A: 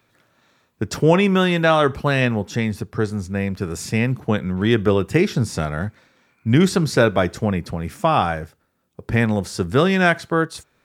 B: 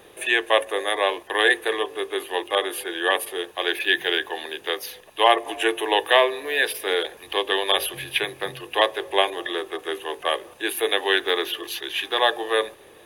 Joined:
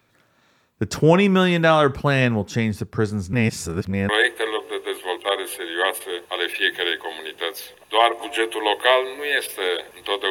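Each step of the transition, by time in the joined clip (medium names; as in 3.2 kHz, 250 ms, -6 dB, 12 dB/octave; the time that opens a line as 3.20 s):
A
3.33–4.09 s: reverse
4.09 s: go over to B from 1.35 s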